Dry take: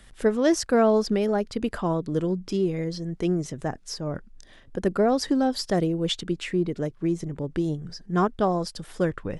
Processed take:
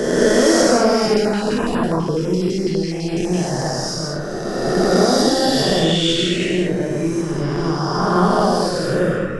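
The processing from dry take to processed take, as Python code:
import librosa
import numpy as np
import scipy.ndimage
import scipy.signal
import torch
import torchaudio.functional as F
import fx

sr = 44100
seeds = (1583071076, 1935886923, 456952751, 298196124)

y = fx.spec_swells(x, sr, rise_s=2.6)
y = fx.rev_gated(y, sr, seeds[0], gate_ms=250, shape='flat', drr_db=-3.0)
y = fx.filter_held_notch(y, sr, hz=12.0, low_hz=530.0, high_hz=6300.0, at=(1.13, 3.33), fade=0.02)
y = y * librosa.db_to_amplitude(-1.0)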